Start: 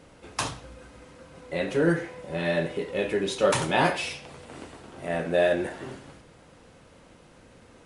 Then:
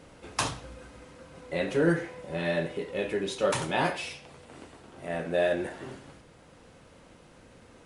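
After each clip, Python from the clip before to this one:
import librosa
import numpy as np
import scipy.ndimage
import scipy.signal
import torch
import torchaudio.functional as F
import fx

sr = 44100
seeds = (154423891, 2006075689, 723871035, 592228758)

y = fx.rider(x, sr, range_db=4, speed_s=2.0)
y = F.gain(torch.from_numpy(y), -3.5).numpy()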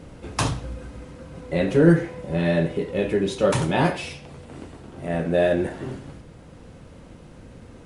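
y = fx.low_shelf(x, sr, hz=350.0, db=12.0)
y = F.gain(torch.from_numpy(y), 2.5).numpy()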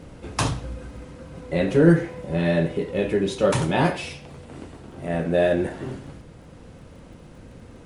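y = fx.dmg_crackle(x, sr, seeds[0], per_s=15.0, level_db=-48.0)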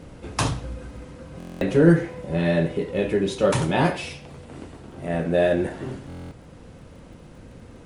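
y = fx.buffer_glitch(x, sr, at_s=(1.38, 6.08), block=1024, repeats=9)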